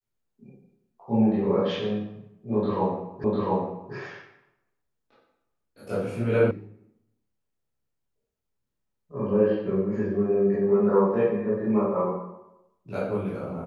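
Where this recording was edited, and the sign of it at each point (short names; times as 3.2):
3.24 repeat of the last 0.7 s
6.51 sound cut off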